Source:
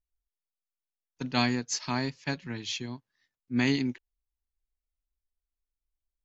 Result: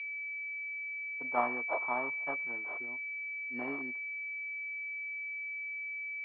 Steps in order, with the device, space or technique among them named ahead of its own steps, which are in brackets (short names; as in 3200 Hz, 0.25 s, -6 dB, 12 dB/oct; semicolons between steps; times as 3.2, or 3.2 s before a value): toy sound module (decimation joined by straight lines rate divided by 8×; pulse-width modulation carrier 2300 Hz; speaker cabinet 500–3900 Hz, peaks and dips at 640 Hz +4 dB, 1500 Hz -4 dB, 2800 Hz +5 dB); 1.24–2.58 dynamic EQ 1100 Hz, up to +8 dB, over -46 dBFS, Q 0.81; gain -4 dB